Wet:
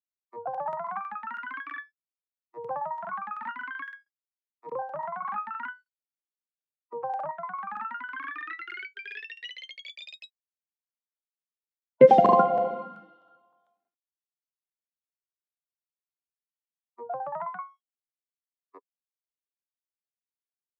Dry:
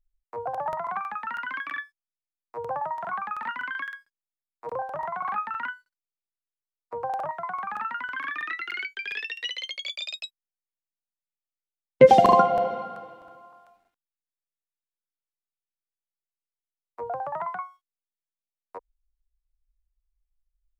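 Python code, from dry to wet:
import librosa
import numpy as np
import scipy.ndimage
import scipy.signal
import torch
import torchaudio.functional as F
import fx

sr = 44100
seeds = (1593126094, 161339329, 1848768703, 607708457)

y = fx.lowpass(x, sr, hz=1100.0, slope=6)
y = fx.noise_reduce_blind(y, sr, reduce_db=14)
y = scipy.signal.sosfilt(scipy.signal.butter(4, 150.0, 'highpass', fs=sr, output='sos'), y)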